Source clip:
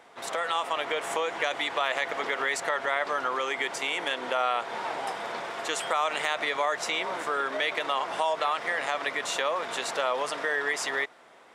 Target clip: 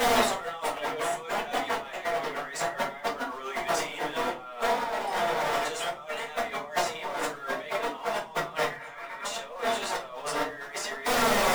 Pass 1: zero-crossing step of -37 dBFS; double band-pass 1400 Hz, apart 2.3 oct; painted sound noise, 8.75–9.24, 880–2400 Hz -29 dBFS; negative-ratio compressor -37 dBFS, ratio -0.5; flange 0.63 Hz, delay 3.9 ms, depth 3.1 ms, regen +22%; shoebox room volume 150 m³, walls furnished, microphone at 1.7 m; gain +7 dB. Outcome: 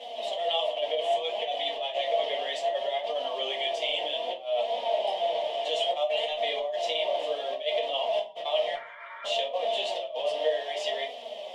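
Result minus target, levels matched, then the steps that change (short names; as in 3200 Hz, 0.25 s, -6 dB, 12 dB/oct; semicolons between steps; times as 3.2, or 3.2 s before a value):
1000 Hz band -4.0 dB
remove: double band-pass 1400 Hz, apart 2.3 oct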